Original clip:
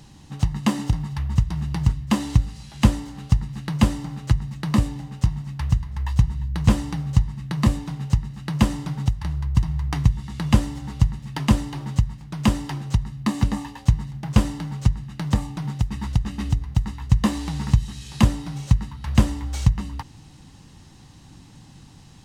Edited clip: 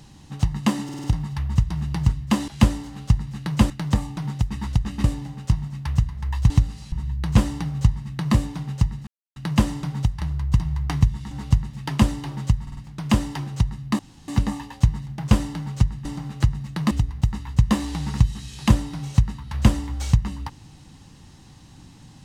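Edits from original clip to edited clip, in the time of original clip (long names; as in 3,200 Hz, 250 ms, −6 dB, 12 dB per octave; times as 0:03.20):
0:00.84: stutter 0.05 s, 5 plays
0:02.28–0:02.70: move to 0:06.24
0:03.92–0:04.78: swap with 0:15.10–0:16.44
0:08.39: splice in silence 0.29 s
0:10.34–0:10.80: remove
0:12.11: stutter 0.05 s, 4 plays
0:13.33: splice in room tone 0.29 s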